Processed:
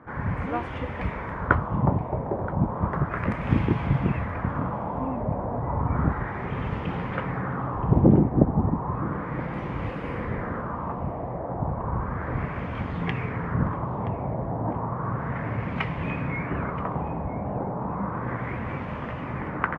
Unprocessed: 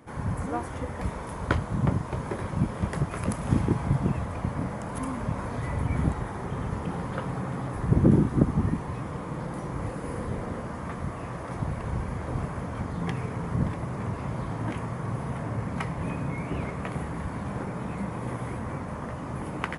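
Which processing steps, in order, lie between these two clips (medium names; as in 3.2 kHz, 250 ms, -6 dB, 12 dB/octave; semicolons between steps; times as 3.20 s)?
LFO low-pass sine 0.33 Hz 720–2800 Hz; delay 975 ms -17.5 dB; trim +1.5 dB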